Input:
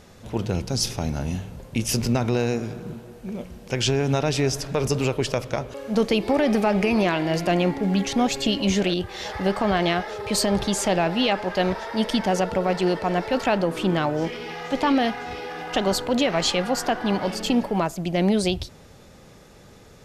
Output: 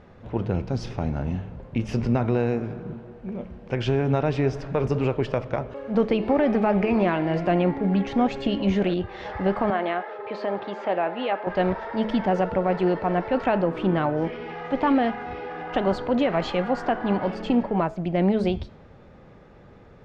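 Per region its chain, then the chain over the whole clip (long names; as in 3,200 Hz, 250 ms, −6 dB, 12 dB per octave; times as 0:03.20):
0:09.70–0:11.47: high-pass filter 410 Hz + high-frequency loss of the air 200 metres
whole clip: low-pass filter 1,900 Hz 12 dB per octave; hum removal 214.9 Hz, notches 36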